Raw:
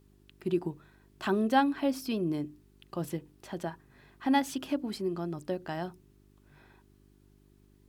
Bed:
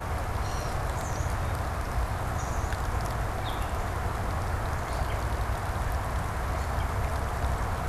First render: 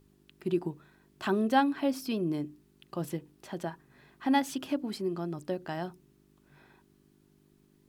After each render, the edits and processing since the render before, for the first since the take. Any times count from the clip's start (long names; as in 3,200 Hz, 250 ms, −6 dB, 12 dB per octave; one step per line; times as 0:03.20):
hum removal 50 Hz, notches 2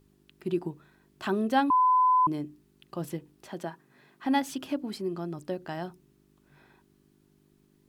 0:01.70–0:02.27: beep over 1,010 Hz −18.5 dBFS
0:03.49–0:04.25: high-pass filter 150 Hz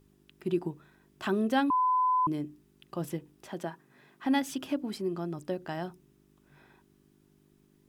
dynamic equaliser 860 Hz, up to −5 dB, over −35 dBFS, Q 1.4
notch filter 4,300 Hz, Q 15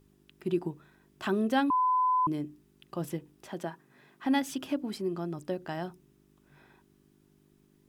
no processing that can be heard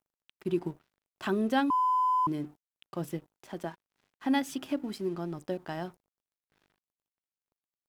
dead-zone distortion −54.5 dBFS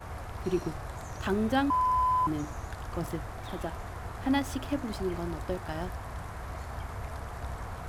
mix in bed −9 dB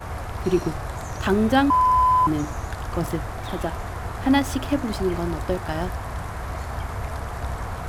level +8.5 dB